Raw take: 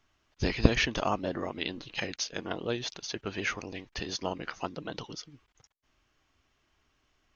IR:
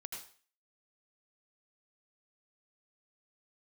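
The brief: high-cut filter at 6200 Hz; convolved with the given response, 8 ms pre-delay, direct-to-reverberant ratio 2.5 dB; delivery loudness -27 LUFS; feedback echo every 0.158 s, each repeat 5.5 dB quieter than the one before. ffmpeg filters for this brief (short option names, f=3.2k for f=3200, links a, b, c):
-filter_complex "[0:a]lowpass=6.2k,aecho=1:1:158|316|474|632|790|948|1106:0.531|0.281|0.149|0.079|0.0419|0.0222|0.0118,asplit=2[a][b];[1:a]atrim=start_sample=2205,adelay=8[c];[b][c]afir=irnorm=-1:irlink=0,volume=0dB[d];[a][d]amix=inputs=2:normalize=0,volume=3dB"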